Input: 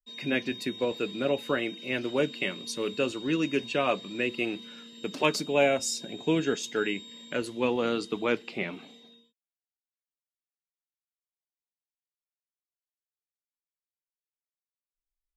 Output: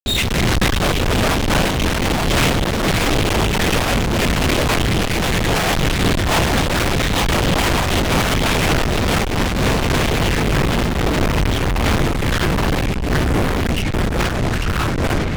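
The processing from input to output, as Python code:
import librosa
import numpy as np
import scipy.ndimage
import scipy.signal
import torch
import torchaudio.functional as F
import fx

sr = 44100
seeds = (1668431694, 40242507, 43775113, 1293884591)

p1 = fx.self_delay(x, sr, depth_ms=0.28)
p2 = fx.low_shelf(p1, sr, hz=220.0, db=11.0)
p3 = fx.level_steps(p2, sr, step_db=19)
p4 = p2 + F.gain(torch.from_numpy(p3), -3.0).numpy()
p5 = fx.echo_pitch(p4, sr, ms=92, semitones=-3, count=3, db_per_echo=-3.0)
p6 = 10.0 ** (-20.5 / 20.0) * (np.abs((p5 / 10.0 ** (-20.5 / 20.0) + 3.0) % 4.0 - 2.0) - 1.0)
p7 = p6 + fx.echo_feedback(p6, sr, ms=858, feedback_pct=42, wet_db=-8, dry=0)
p8 = fx.lpc_vocoder(p7, sr, seeds[0], excitation='whisper', order=8)
p9 = fx.fuzz(p8, sr, gain_db=53.0, gate_db=-54.0)
y = fx.am_noise(p9, sr, seeds[1], hz=5.7, depth_pct=55)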